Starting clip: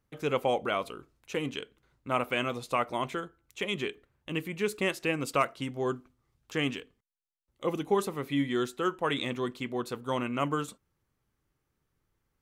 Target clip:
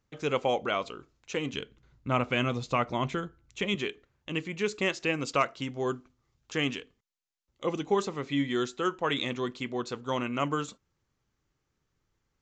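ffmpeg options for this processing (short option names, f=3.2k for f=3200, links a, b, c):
-filter_complex "[0:a]highshelf=f=4k:g=6,aresample=16000,aresample=44100,asettb=1/sr,asplit=3[a][b][c];[a]atrim=end=1.534[d];[b]atrim=start=1.53:end=3.75,asetpts=PTS-STARTPTS,afade=t=in:d=0.004:c=qsin,afade=t=out:st=2.216:d=0.004:c=qsin,bass=f=250:g=10,treble=f=4k:g=-2[e];[c]atrim=start=3.746[f];[d][e]acrossfade=d=0.004:c1=hsin:c2=qsin[g];[g][f]acrossfade=d=0.004:c1=qsin:c2=hsin"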